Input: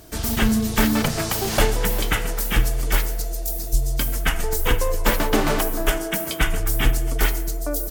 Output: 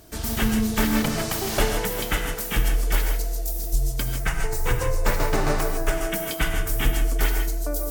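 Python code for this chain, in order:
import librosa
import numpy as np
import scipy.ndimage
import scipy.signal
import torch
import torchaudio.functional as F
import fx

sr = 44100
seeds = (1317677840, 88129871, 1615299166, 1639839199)

y = fx.graphic_eq_31(x, sr, hz=(125, 250, 3150, 12500), db=(10, -10, -9, -10), at=(4.01, 5.94))
y = fx.rev_gated(y, sr, seeds[0], gate_ms=180, shape='rising', drr_db=4.5)
y = y * 10.0 ** (-4.0 / 20.0)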